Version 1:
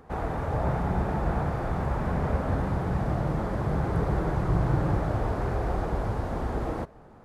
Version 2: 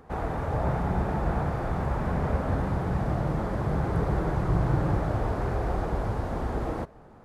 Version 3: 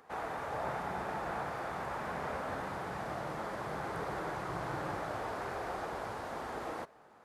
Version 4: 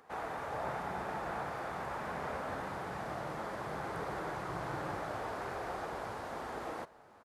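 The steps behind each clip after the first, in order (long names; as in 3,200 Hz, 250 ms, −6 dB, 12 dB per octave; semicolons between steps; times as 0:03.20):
no processing that can be heard
high-pass filter 1,200 Hz 6 dB per octave
single-tap delay 987 ms −23.5 dB; level −1 dB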